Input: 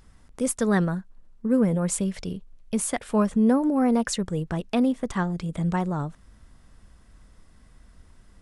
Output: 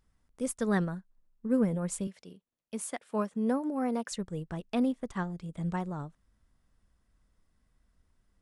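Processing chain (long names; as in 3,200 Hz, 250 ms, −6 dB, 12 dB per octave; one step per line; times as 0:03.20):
0:02.07–0:04.12: Bessel high-pass filter 250 Hz, order 2
expander for the loud parts 1.5 to 1, over −43 dBFS
level −5 dB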